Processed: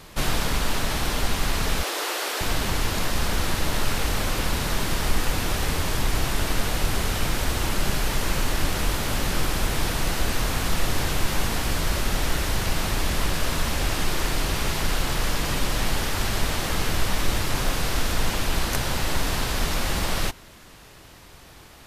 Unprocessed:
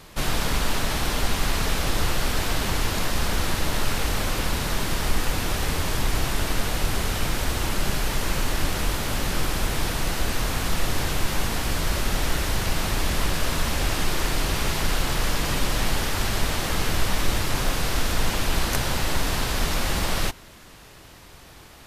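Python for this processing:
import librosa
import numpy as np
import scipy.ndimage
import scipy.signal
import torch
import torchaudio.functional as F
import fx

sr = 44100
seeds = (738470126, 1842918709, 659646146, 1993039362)

y = fx.steep_highpass(x, sr, hz=340.0, slope=36, at=(1.83, 2.41))
y = fx.rider(y, sr, range_db=10, speed_s=0.5)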